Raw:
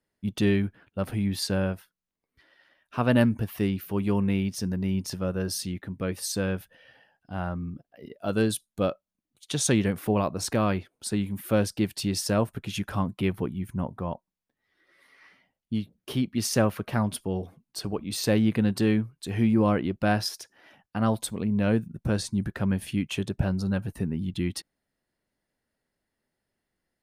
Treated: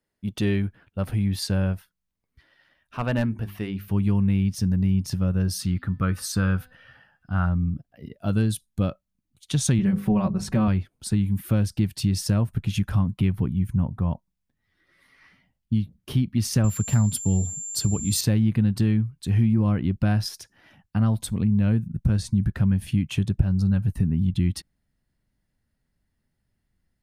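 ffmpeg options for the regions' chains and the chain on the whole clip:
-filter_complex "[0:a]asettb=1/sr,asplit=3[s0][s1][s2];[s0]atrim=end=2.974[s3];[s1]atrim=start=2.97:end=3.88,asetpts=PTS-STARTPTS,afade=t=in:d=0.004:c=qsin,afade=t=out:st=0.906:d=0.004:c=qsin,bass=f=250:g=-10,treble=f=4000:g=-7,bandreject=f=50:t=h:w=6,bandreject=f=100:t=h:w=6,bandreject=f=150:t=h:w=6,bandreject=f=200:t=h:w=6,bandreject=f=250:t=h:w=6,bandreject=f=300:t=h:w=6,bandreject=f=350:t=h:w=6,bandreject=f=400:t=h:w=6,asoftclip=type=hard:threshold=0.133[s4];[s2]atrim=start=3.876[s5];[s3][s4]acrossfade=d=0.004:c1=hsin:c2=qsin[s6];[s6][s5]acrossfade=d=0.004:c1=qsin:c2=hsin,asettb=1/sr,asplit=3[s7][s8][s9];[s7]atrim=end=5.604[s10];[s8]atrim=start=5.6:end=7.46,asetpts=PTS-STARTPTS,afade=t=in:d=0.004:c=qsin,afade=t=out:st=1.856:d=0.004:c=qsin,equalizer=f=1300:t=o:w=0.64:g=14,bandreject=f=251.8:t=h:w=4,bandreject=f=503.6:t=h:w=4,bandreject=f=755.4:t=h:w=4,bandreject=f=1007.2:t=h:w=4,bandreject=f=1259:t=h:w=4,bandreject=f=1510.8:t=h:w=4,bandreject=f=1762.6:t=h:w=4,bandreject=f=2014.4:t=h:w=4,bandreject=f=2266.2:t=h:w=4,bandreject=f=2518:t=h:w=4,bandreject=f=2769.8:t=h:w=4,bandreject=f=3021.6:t=h:w=4,bandreject=f=3273.4:t=h:w=4,bandreject=f=3525.2:t=h:w=4,bandreject=f=3777:t=h:w=4,bandreject=f=4028.8:t=h:w=4,bandreject=f=4280.6:t=h:w=4,bandreject=f=4532.4:t=h:w=4,bandreject=f=4784.2:t=h:w=4,bandreject=f=5036:t=h:w=4[s11];[s9]atrim=start=7.456[s12];[s10][s11]acrossfade=d=0.004:c1=hsin:c2=qsin[s13];[s13][s12]acrossfade=d=0.004:c1=qsin:c2=hsin,asettb=1/sr,asplit=3[s14][s15][s16];[s14]atrim=end=9.784[s17];[s15]atrim=start=9.78:end=10.68,asetpts=PTS-STARTPTS,afade=t=in:d=0.004:c=qsin,afade=t=out:st=0.896:d=0.004:c=qsin,highshelf=f=2900:g=-9,bandreject=f=50:t=h:w=6,bandreject=f=100:t=h:w=6,bandreject=f=150:t=h:w=6,bandreject=f=200:t=h:w=6,bandreject=f=250:t=h:w=6,bandreject=f=300:t=h:w=6,bandreject=f=350:t=h:w=6,bandreject=f=400:t=h:w=6,bandreject=f=450:t=h:w=6,bandreject=f=500:t=h:w=6,aecho=1:1:5.3:0.78,atrim=end_sample=39690[s18];[s16]atrim=start=10.676[s19];[s17][s18]acrossfade=d=0.004:c1=hsin:c2=qsin[s20];[s20][s19]acrossfade=d=0.004:c1=qsin:c2=hsin,asettb=1/sr,asplit=3[s21][s22][s23];[s21]atrim=end=16.644[s24];[s22]atrim=start=16.64:end=18.21,asetpts=PTS-STARTPTS,afade=t=in:d=0.004:c=qsin,afade=t=out:st=1.566:d=0.004:c=qsin,highpass=42,bass=f=250:g=3,treble=f=4000:g=10,aeval=exprs='val(0)+0.0282*sin(2*PI*7300*n/s)':c=same[s25];[s23]atrim=start=18.206[s26];[s24][s25]acrossfade=d=0.004:c1=hsin:c2=qsin[s27];[s27][s26]acrossfade=d=0.004:c1=qsin:c2=hsin,asubboost=boost=6:cutoff=170,acompressor=threshold=0.126:ratio=3"

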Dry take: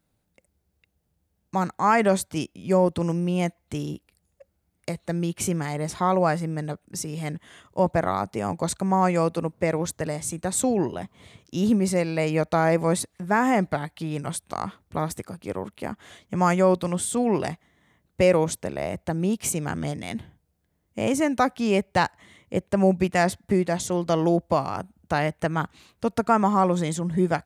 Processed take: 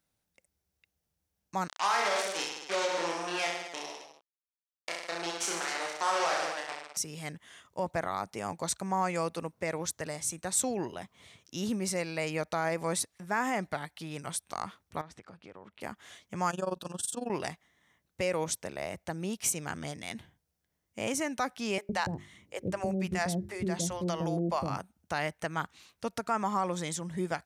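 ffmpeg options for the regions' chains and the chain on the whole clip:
-filter_complex "[0:a]asettb=1/sr,asplit=3[s0][s1][s2];[s0]atrim=end=1.684[s3];[s1]atrim=start=1.68:end=6.97,asetpts=PTS-STARTPTS,afade=t=in:d=0.004:c=qsin,afade=t=out:st=5.286:d=0.004:c=qsin,acrusher=bits=3:mix=0:aa=0.5,highpass=490,lowpass=7100,aecho=1:1:30|64.5|104.2|149.8|202.3|262.6:0.794|0.631|0.501|0.398|0.316|0.251,atrim=end_sample=233289[s4];[s2]atrim=start=6.966[s5];[s3][s4]acrossfade=d=0.004:c1=hsin:c2=qsin[s6];[s6][s5]acrossfade=d=0.004:c1=qsin:c2=hsin,asettb=1/sr,asplit=3[s7][s8][s9];[s7]atrim=end=15.014[s10];[s8]atrim=start=15.01:end=15.81,asetpts=PTS-STARTPTS,afade=t=in:d=0.004:c=qsin,afade=t=out:st=0.796:d=0.004:c=qsin,lowpass=3200,acompressor=threshold=0.0178:ratio=6:attack=3.2:release=140:knee=1:detection=peak[s11];[s9]atrim=start=15.806[s12];[s10][s11]acrossfade=d=0.004:c1=hsin:c2=qsin[s13];[s13][s12]acrossfade=d=0.004:c1=qsin:c2=hsin,asettb=1/sr,asplit=3[s14][s15][s16];[s14]atrim=end=16.504[s17];[s15]atrim=start=16.5:end=17.3,asetpts=PTS-STARTPTS,afade=t=in:d=0.004:c=qsin,afade=t=out:st=0.796:d=0.004:c=qsin,tremolo=f=22:d=0.889,asuperstop=centerf=2100:order=8:qfactor=2.9[s18];[s16]atrim=start=17.296[s19];[s17][s18]acrossfade=d=0.004:c1=hsin:c2=qsin[s20];[s20][s19]acrossfade=d=0.004:c1=qsin:c2=hsin,asettb=1/sr,asplit=3[s21][s22][s23];[s21]atrim=end=21.784[s24];[s22]atrim=start=21.78:end=24.78,asetpts=PTS-STARTPTS,afade=t=in:d=0.004:c=qsin,afade=t=out:st=2.996:d=0.004:c=qsin,lowshelf=f=350:g=10.5,bandreject=f=50:t=h:w=6,bandreject=f=100:t=h:w=6,bandreject=f=150:t=h:w=6,bandreject=f=200:t=h:w=6,bandreject=f=250:t=h:w=6,bandreject=f=300:t=h:w=6,bandreject=f=350:t=h:w=6,bandreject=f=400:t=h:w=6,acrossover=split=500[s25][s26];[s25]adelay=110[s27];[s27][s26]amix=inputs=2:normalize=0,atrim=end_sample=132300[s28];[s23]atrim=start=24.776[s29];[s24][s28]acrossfade=d=0.004:c1=hsin:c2=qsin[s30];[s30][s29]acrossfade=d=0.004:c1=qsin:c2=hsin,equalizer=f=5700:w=5.6:g=5,alimiter=limit=0.224:level=0:latency=1:release=80,tiltshelf=f=730:g=-5,volume=0.422"

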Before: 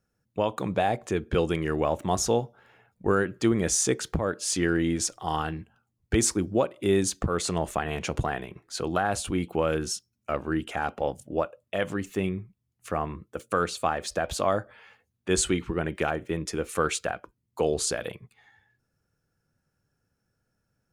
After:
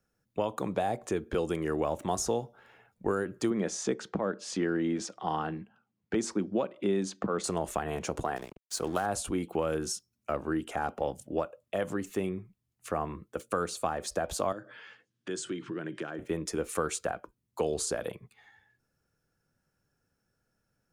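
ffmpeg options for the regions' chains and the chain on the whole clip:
-filter_complex "[0:a]asettb=1/sr,asplit=3[s0][s1][s2];[s0]atrim=end=3.504[s3];[s1]atrim=start=3.5:end=7.44,asetpts=PTS-STARTPTS,afade=t=in:d=0.004:c=qsin,afade=t=out:st=3.936:d=0.004:c=qsin,highpass=150,lowpass=3800,equalizer=f=200:w=4.7:g=8.5[s4];[s2]atrim=start=7.436[s5];[s3][s4]acrossfade=d=0.004:c1=hsin:c2=qsin[s6];[s6][s5]acrossfade=d=0.004:c1=qsin:c2=hsin,asettb=1/sr,asplit=3[s7][s8][s9];[s7]atrim=end=8.364[s10];[s8]atrim=start=8.36:end=9.06,asetpts=PTS-STARTPTS,afade=t=in:d=0.004:c=qsin,afade=t=out:st=0.696:d=0.004:c=qsin,highshelf=f=2700:g=8,aeval=exprs='sgn(val(0))*max(abs(val(0))-0.00891,0)':c=same[s11];[s9]atrim=start=9.056[s12];[s10][s11]acrossfade=d=0.004:c1=hsin:c2=qsin[s13];[s13][s12]acrossfade=d=0.004:c1=qsin:c2=hsin,asettb=1/sr,asplit=3[s14][s15][s16];[s14]atrim=end=14.524[s17];[s15]atrim=start=14.52:end=16.19,asetpts=PTS-STARTPTS,afade=t=in:d=0.004:c=qsin,afade=t=out:st=1.666:d=0.004:c=qsin,acompressor=threshold=0.0112:ratio=2.5:attack=3.2:release=140:knee=1:detection=peak,highpass=f=130:w=0.5412,highpass=f=130:w=1.3066,equalizer=f=130:t=q:w=4:g=9,equalizer=f=320:t=q:w=4:g=8,equalizer=f=790:t=q:w=4:g=-6,equalizer=f=1600:t=q:w=4:g=7,equalizer=f=3200:t=q:w=4:g=7,equalizer=f=5200:t=q:w=4:g=5,lowpass=f=8500:w=0.5412,lowpass=f=8500:w=1.3066[s18];[s16]atrim=start=16.186[s19];[s17][s18]acrossfade=d=0.004:c1=hsin:c2=qsin[s20];[s20][s19]acrossfade=d=0.004:c1=qsin:c2=hsin,equalizer=f=94:t=o:w=1.8:g=-4.5,acrossover=split=220|1500|5000[s21][s22][s23][s24];[s21]acompressor=threshold=0.0112:ratio=4[s25];[s22]acompressor=threshold=0.0447:ratio=4[s26];[s23]acompressor=threshold=0.00316:ratio=4[s27];[s24]acompressor=threshold=0.0251:ratio=4[s28];[s25][s26][s27][s28]amix=inputs=4:normalize=0"

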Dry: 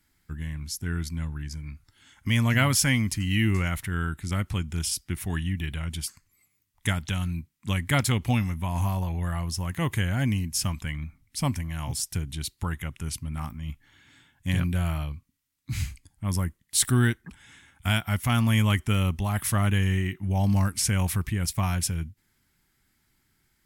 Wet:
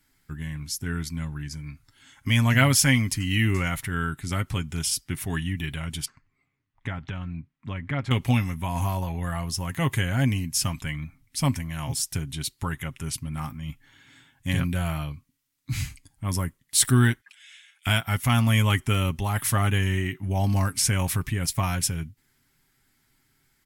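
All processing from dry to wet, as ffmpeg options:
-filter_complex "[0:a]asettb=1/sr,asplit=3[s0][s1][s2];[s0]atrim=end=6.054[s3];[s1]atrim=start=6.05:end=8.11,asetpts=PTS-STARTPTS,afade=t=in:d=0.004:c=qsin,afade=t=out:st=2.056:d=0.004:c=qsin,lowpass=2000,acompressor=threshold=0.0251:ratio=2:attack=3.2:release=140:knee=1:detection=peak[s4];[s2]atrim=start=8.106[s5];[s3][s4]acrossfade=d=0.004:c1=hsin:c2=qsin[s6];[s6][s5]acrossfade=d=0.004:c1=qsin:c2=hsin,asettb=1/sr,asplit=3[s7][s8][s9];[s7]atrim=end=17.214[s10];[s8]atrim=start=17.21:end=17.87,asetpts=PTS-STARTPTS,afade=t=in:d=0.004:c=qsin,afade=t=out:st=0.656:d=0.004:c=qsin,highpass=f=2600:t=q:w=1.6,highshelf=f=11000:g=-8[s11];[s9]atrim=start=17.866[s12];[s10][s11]acrossfade=d=0.004:c1=hsin:c2=qsin[s13];[s13][s12]acrossfade=d=0.004:c1=qsin:c2=hsin,equalizer=f=70:t=o:w=2.6:g=-2.5,aecho=1:1:7.4:0.42,volume=1.26"

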